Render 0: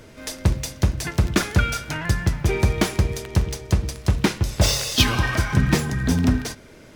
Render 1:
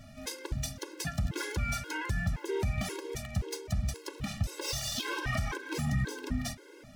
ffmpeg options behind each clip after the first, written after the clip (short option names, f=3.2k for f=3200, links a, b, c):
-af "acompressor=threshold=-17dB:ratio=6,alimiter=limit=-17dB:level=0:latency=1:release=70,afftfilt=real='re*gt(sin(2*PI*1.9*pts/sr)*(1-2*mod(floor(b*sr/1024/280),2)),0)':imag='im*gt(sin(2*PI*1.9*pts/sr)*(1-2*mod(floor(b*sr/1024/280),2)),0)':win_size=1024:overlap=0.75,volume=-3dB"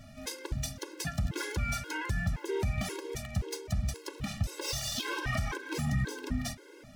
-af anull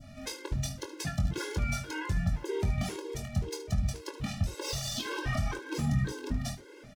-filter_complex "[0:a]highshelf=f=9.3k:g=-7.5,asplit=2[a][b];[b]aecho=0:1:22|74:0.447|0.188[c];[a][c]amix=inputs=2:normalize=0,adynamicequalizer=threshold=0.00282:dfrequency=1900:dqfactor=0.8:tfrequency=1900:tqfactor=0.8:attack=5:release=100:ratio=0.375:range=2.5:mode=cutabove:tftype=bell,volume=1dB"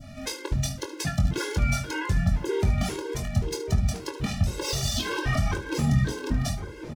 -filter_complex "[0:a]asplit=2[a][b];[b]adelay=1106,lowpass=f=1k:p=1,volume=-9dB,asplit=2[c][d];[d]adelay=1106,lowpass=f=1k:p=1,volume=0.46,asplit=2[e][f];[f]adelay=1106,lowpass=f=1k:p=1,volume=0.46,asplit=2[g][h];[h]adelay=1106,lowpass=f=1k:p=1,volume=0.46,asplit=2[i][j];[j]adelay=1106,lowpass=f=1k:p=1,volume=0.46[k];[a][c][e][g][i][k]amix=inputs=6:normalize=0,volume=6dB"